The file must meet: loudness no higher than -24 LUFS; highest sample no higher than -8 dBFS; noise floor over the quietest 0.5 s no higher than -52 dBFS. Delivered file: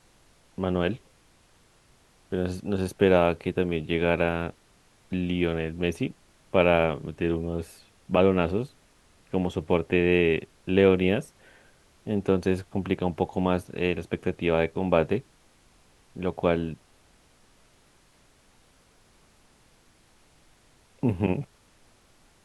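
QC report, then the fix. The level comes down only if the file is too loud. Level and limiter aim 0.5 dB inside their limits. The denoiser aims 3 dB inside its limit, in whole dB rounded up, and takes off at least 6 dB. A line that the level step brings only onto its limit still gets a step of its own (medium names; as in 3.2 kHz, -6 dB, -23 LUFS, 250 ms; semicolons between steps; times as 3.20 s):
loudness -26.0 LUFS: pass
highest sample -4.5 dBFS: fail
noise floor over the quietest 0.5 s -60 dBFS: pass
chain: peak limiter -8.5 dBFS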